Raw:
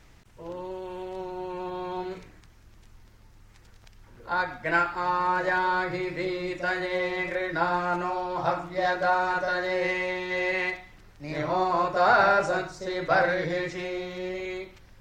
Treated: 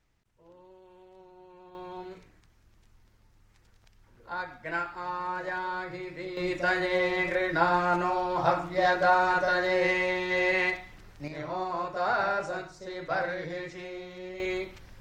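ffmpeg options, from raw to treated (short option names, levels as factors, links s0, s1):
-af "asetnsamples=n=441:p=0,asendcmd='1.75 volume volume -8dB;6.37 volume volume 1.5dB;11.28 volume volume -7.5dB;14.4 volume volume 3dB',volume=0.126"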